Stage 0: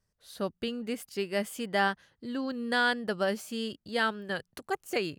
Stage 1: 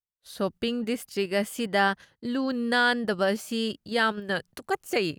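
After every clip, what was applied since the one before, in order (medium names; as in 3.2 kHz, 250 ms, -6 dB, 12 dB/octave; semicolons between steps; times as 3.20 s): expander -52 dBFS; in parallel at +2 dB: level held to a coarse grid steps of 20 dB; on the sum: trim +2 dB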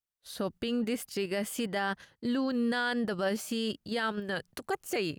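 peak limiter -22 dBFS, peak gain reduction 10.5 dB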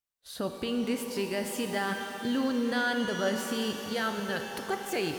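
pitch-shifted reverb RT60 3.6 s, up +12 st, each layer -8 dB, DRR 4.5 dB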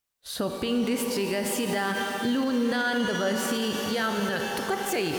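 peak limiter -26 dBFS, peak gain reduction 8.5 dB; trim +8 dB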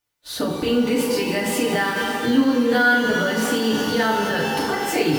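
in parallel at -8.5 dB: sample-rate reducer 17 kHz; on the sum: FDN reverb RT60 0.42 s, low-frequency decay 1.4×, high-frequency decay 0.9×, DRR -4 dB; trim -1.5 dB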